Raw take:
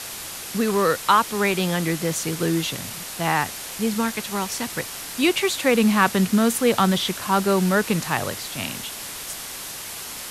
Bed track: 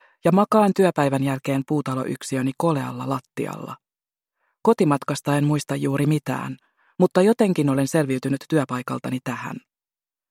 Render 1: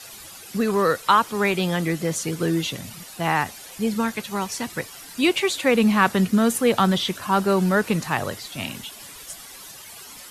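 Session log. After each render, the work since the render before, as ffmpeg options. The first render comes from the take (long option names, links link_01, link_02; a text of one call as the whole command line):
ffmpeg -i in.wav -af "afftdn=noise_reduction=12:noise_floor=-35" out.wav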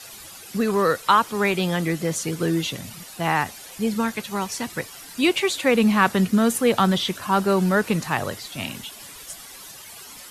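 ffmpeg -i in.wav -af anull out.wav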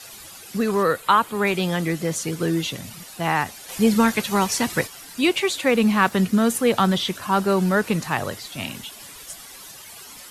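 ffmpeg -i in.wav -filter_complex "[0:a]asettb=1/sr,asplit=3[link_01][link_02][link_03];[link_01]atrim=end=0.834[link_04];[link_02]atrim=start=0.83:end=1.47,asetpts=PTS-STARTPTS,afade=type=in:duration=0.004:curve=qsin,afade=type=out:start_time=0.636:duration=0.004:curve=qsin,equalizer=frequency=5600:width=2.6:gain=-10.5[link_05];[link_03]atrim=start=1.466[link_06];[link_04][link_05]acrossfade=duration=0.004:curve1=hsin:curve2=qsin[link_07];[link_07][link_06]acrossfade=duration=0.004:curve1=qsin:curve2=hsin,asplit=3[link_08][link_09][link_10];[link_08]afade=type=out:start_time=3.68:duration=0.02[link_11];[link_09]acontrast=69,afade=type=in:start_time=3.68:duration=0.02,afade=type=out:start_time=4.86:duration=0.02[link_12];[link_10]afade=type=in:start_time=4.86:duration=0.02[link_13];[link_11][link_12][link_13]amix=inputs=3:normalize=0,asettb=1/sr,asplit=3[link_14][link_15][link_16];[link_14]atrim=end=5.684[link_17];[link_15]atrim=start=5.68:end=6.12,asetpts=PTS-STARTPTS,afade=type=in:duration=0.004:curve=qsin,afade=type=out:start_time=0.436:duration=0.004:curve=qsin,aeval=exprs='sgn(val(0))*max(abs(val(0))-0.00668,0)':channel_layout=same[link_18];[link_16]atrim=start=6.116[link_19];[link_17][link_18]acrossfade=duration=0.004:curve1=hsin:curve2=qsin[link_20];[link_20][link_19]acrossfade=duration=0.004:curve1=qsin:curve2=hsin" out.wav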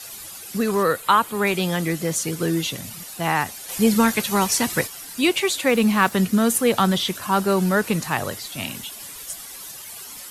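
ffmpeg -i in.wav -af "highshelf=frequency=7700:gain=8" out.wav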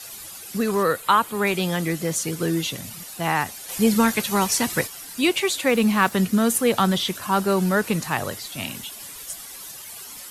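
ffmpeg -i in.wav -af "volume=-1dB" out.wav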